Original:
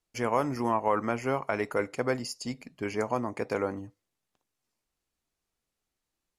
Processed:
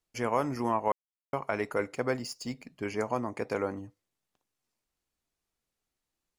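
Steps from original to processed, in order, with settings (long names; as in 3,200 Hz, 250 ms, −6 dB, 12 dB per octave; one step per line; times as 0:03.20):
0:00.92–0:01.33: silence
0:01.95–0:02.72: running median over 3 samples
level −1.5 dB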